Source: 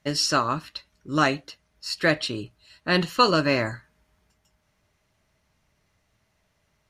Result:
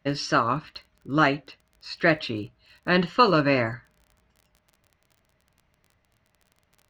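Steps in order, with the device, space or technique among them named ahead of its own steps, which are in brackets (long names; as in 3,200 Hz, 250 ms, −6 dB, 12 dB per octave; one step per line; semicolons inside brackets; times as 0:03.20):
lo-fi chain (low-pass filter 3,100 Hz 12 dB per octave; tape wow and flutter; surface crackle 27 per second −43 dBFS)
level +1 dB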